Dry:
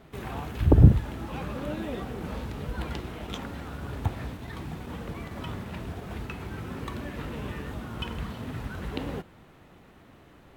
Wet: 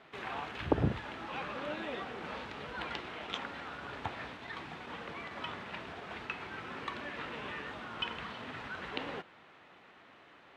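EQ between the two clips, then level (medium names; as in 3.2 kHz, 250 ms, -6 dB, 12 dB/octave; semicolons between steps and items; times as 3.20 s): high-pass 1.4 kHz 6 dB/octave; low-pass 3.4 kHz 12 dB/octave; +4.5 dB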